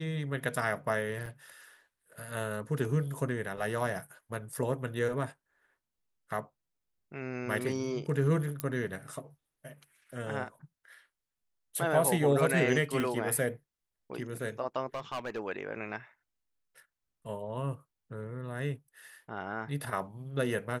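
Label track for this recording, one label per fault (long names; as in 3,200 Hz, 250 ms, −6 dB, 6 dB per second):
1.260000	1.260000	drop-out 2.3 ms
8.600000	8.600000	click −17 dBFS
13.000000	13.000000	click −19 dBFS
14.940000	15.390000	clipping −31 dBFS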